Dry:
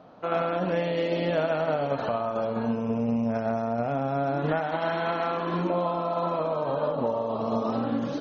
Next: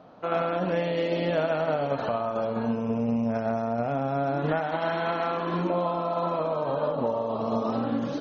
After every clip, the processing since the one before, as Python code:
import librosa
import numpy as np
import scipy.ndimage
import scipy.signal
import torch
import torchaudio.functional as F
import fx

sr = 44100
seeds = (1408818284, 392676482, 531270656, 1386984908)

y = x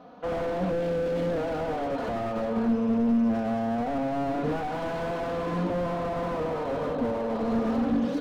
y = x + 0.74 * np.pad(x, (int(4.1 * sr / 1000.0), 0))[:len(x)]
y = fx.slew_limit(y, sr, full_power_hz=25.0)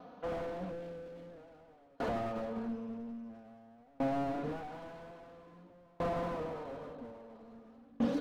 y = fx.tremolo_decay(x, sr, direction='decaying', hz=0.5, depth_db=33)
y = y * librosa.db_to_amplitude(-2.5)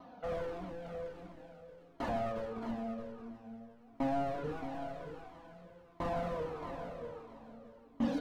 y = x + 10.0 ** (-9.0 / 20.0) * np.pad(x, (int(622 * sr / 1000.0), 0))[:len(x)]
y = fx.comb_cascade(y, sr, direction='falling', hz=1.5)
y = y * librosa.db_to_amplitude(4.0)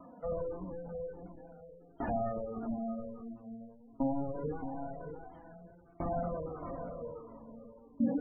y = fx.spec_gate(x, sr, threshold_db=-20, keep='strong')
y = fx.notch_cascade(y, sr, direction='falling', hz=0.28)
y = y * librosa.db_to_amplitude(3.0)